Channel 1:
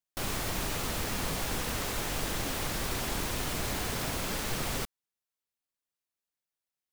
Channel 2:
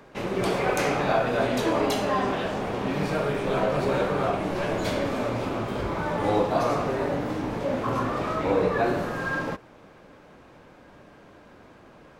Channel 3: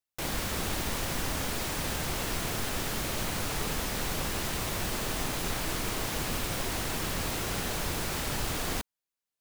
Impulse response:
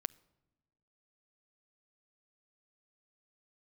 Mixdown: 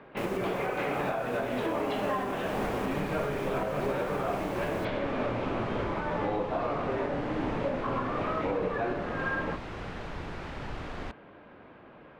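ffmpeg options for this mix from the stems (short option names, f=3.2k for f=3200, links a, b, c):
-filter_complex "[0:a]volume=-14dB[a];[1:a]lowpass=f=3.2k:w=0.5412,lowpass=f=3.2k:w=1.3066,lowshelf=f=85:g=-7.5,volume=-0.5dB[b];[2:a]lowpass=2.2k,adelay=2300,volume=-4.5dB[c];[a][b][c]amix=inputs=3:normalize=0,alimiter=limit=-21dB:level=0:latency=1:release=416"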